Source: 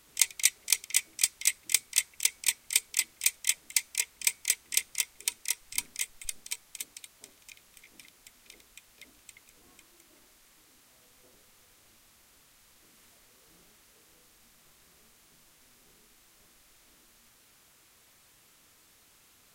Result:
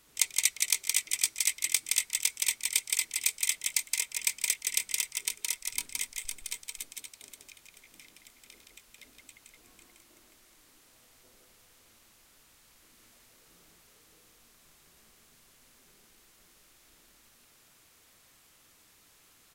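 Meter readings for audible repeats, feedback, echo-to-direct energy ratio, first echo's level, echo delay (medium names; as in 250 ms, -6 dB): 2, no regular repeats, -2.0 dB, -3.0 dB, 169 ms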